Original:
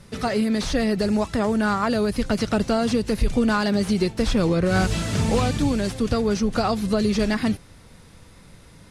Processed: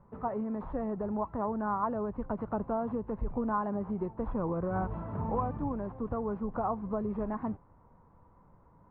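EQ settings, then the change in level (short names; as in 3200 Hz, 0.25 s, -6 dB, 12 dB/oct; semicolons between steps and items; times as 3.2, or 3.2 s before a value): ladder low-pass 1100 Hz, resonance 65%; air absorption 110 m; -2.0 dB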